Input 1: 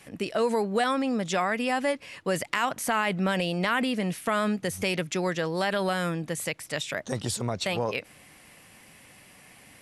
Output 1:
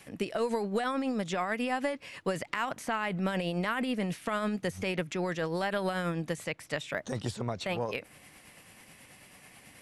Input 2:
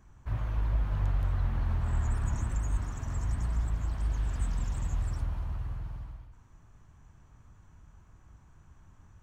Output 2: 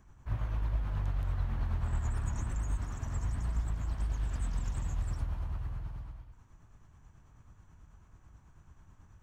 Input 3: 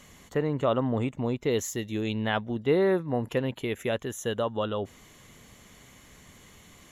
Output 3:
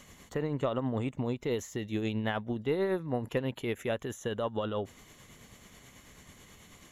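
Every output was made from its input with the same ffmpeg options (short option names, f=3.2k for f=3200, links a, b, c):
-filter_complex "[0:a]acrossover=split=2800|7000[a][b][c];[a]acompressor=threshold=-26dB:ratio=4[d];[b]acompressor=threshold=-47dB:ratio=4[e];[c]acompressor=threshold=-54dB:ratio=4[f];[d][e][f]amix=inputs=3:normalize=0,tremolo=f=9.2:d=0.37,aeval=exprs='0.251*(cos(1*acos(clip(val(0)/0.251,-1,1)))-cos(1*PI/2))+0.00251*(cos(8*acos(clip(val(0)/0.251,-1,1)))-cos(8*PI/2))':c=same"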